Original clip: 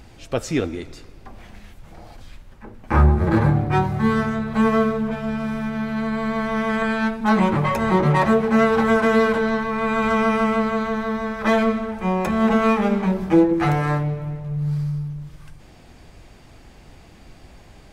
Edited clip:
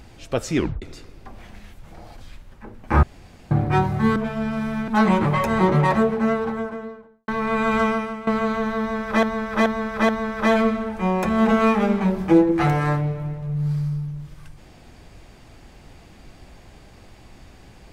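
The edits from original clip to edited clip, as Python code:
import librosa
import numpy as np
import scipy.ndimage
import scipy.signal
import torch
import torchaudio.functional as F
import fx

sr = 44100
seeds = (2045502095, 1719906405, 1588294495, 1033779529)

y = fx.studio_fade_out(x, sr, start_s=7.88, length_s=1.71)
y = fx.edit(y, sr, fx.tape_stop(start_s=0.57, length_s=0.25),
    fx.room_tone_fill(start_s=3.03, length_s=0.48),
    fx.cut(start_s=4.16, length_s=0.87),
    fx.cut(start_s=5.75, length_s=1.44),
    fx.fade_out_to(start_s=10.14, length_s=0.44, curve='qua', floor_db=-14.5),
    fx.repeat(start_s=11.11, length_s=0.43, count=4), tone=tone)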